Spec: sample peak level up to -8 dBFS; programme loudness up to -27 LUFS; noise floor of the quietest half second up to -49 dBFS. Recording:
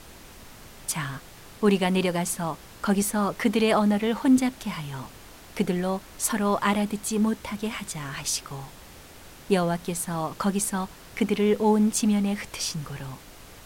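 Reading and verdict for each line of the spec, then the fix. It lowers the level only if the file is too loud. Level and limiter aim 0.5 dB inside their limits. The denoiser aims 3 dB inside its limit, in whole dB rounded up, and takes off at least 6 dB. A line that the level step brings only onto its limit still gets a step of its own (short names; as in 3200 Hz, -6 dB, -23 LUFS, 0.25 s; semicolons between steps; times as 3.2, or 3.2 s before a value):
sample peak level -10.0 dBFS: OK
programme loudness -25.5 LUFS: fail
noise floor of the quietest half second -46 dBFS: fail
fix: denoiser 6 dB, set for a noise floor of -46 dBFS; gain -2 dB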